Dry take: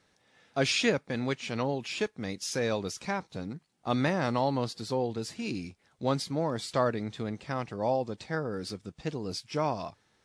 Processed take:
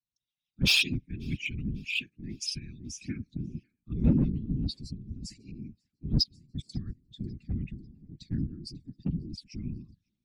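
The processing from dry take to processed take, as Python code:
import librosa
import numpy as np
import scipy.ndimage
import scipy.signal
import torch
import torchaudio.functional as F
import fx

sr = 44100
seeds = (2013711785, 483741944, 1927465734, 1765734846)

p1 = fx.spec_expand(x, sr, power=2.0)
p2 = scipy.signal.sosfilt(scipy.signal.ellip(3, 1.0, 60, [170.0, 2500.0], 'bandstop', fs=sr, output='sos'), p1)
p3 = fx.step_gate(p2, sr, bpm=195, pattern='....x.xxx', floor_db=-24.0, edge_ms=4.5, at=(6.05, 7.1), fade=0.02)
p4 = fx.env_phaser(p3, sr, low_hz=270.0, high_hz=1700.0, full_db=-32.0)
p5 = 10.0 ** (-32.0 / 20.0) * (np.abs((p4 / 10.0 ** (-32.0 / 20.0) + 3.0) % 4.0 - 2.0) - 1.0)
p6 = p4 + (p5 * 10.0 ** (-6.0 / 20.0))
p7 = fx.whisperise(p6, sr, seeds[0])
p8 = p7 + fx.echo_thinned(p7, sr, ms=546, feedback_pct=51, hz=950.0, wet_db=-23.0, dry=0)
p9 = fx.band_widen(p8, sr, depth_pct=70)
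y = p9 * 10.0 ** (3.0 / 20.0)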